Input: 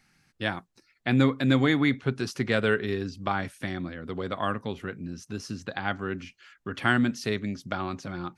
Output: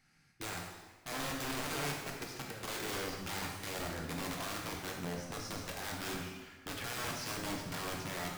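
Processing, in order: peak limiter -20 dBFS, peak gain reduction 12.5 dB; 1.51–2.68 s: level held to a coarse grid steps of 15 dB; integer overflow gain 28.5 dB; plate-style reverb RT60 1.3 s, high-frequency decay 0.85×, DRR -1 dB; trim -7 dB

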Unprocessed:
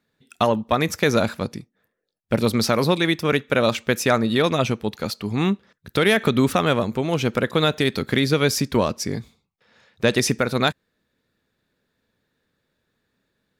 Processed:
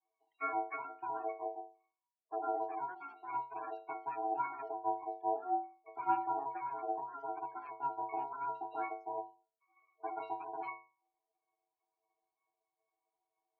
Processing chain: self-modulated delay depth 0.61 ms; in parallel at -4 dB: saturation -16.5 dBFS, distortion -10 dB; on the sum: loudest bins only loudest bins 16; pitch-class resonator G#, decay 0.35 s; ring modulator 550 Hz; band-pass 730–3100 Hz; trim +3 dB

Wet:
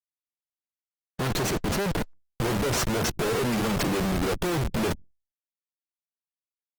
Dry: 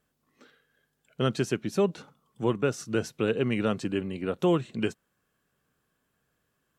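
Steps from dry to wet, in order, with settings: spectral noise reduction 20 dB; Schmitt trigger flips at -41 dBFS; trim +5.5 dB; Opus 16 kbps 48 kHz

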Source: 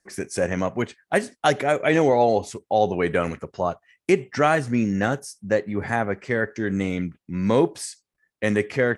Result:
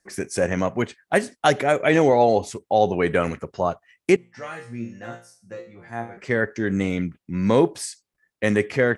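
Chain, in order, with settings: 4.16–6.17 s: chord resonator A#2 fifth, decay 0.4 s; trim +1.5 dB

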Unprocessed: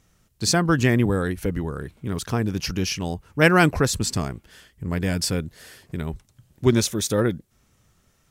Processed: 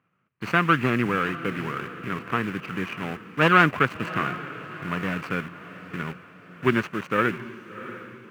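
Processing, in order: median filter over 25 samples; high-pass 130 Hz 24 dB/octave; treble shelf 5.5 kHz -10.5 dB; in parallel at -5 dB: word length cut 6-bit, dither none; on the sum: high-order bell 1.8 kHz +16 dB; on a send: echo that smears into a reverb 686 ms, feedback 47%, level -14 dB; on the sum: trim -7.5 dB

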